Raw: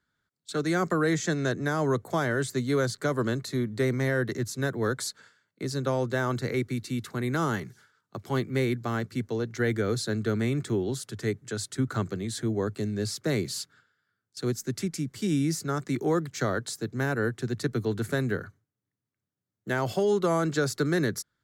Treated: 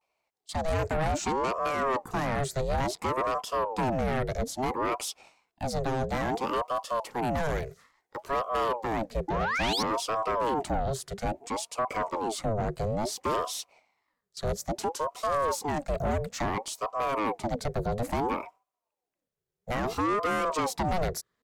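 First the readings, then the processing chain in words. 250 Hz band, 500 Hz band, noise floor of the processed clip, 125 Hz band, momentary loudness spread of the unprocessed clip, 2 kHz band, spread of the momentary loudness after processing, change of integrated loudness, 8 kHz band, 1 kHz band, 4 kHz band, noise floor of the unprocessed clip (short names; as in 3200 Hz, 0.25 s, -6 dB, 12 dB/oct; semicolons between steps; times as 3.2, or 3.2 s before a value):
-6.0 dB, -1.5 dB, under -85 dBFS, -5.5 dB, 7 LU, -3.0 dB, 6 LU, -1.5 dB, -1.5 dB, +7.0 dB, +0.5 dB, under -85 dBFS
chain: dynamic EQ 280 Hz, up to +6 dB, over -39 dBFS, Q 0.72; vibrato 0.4 Hz 48 cents; painted sound rise, 9.28–9.83, 550–5300 Hz -26 dBFS; soft clip -24 dBFS, distortion -9 dB; ring modulator with a swept carrier 570 Hz, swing 55%, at 0.59 Hz; gain +2.5 dB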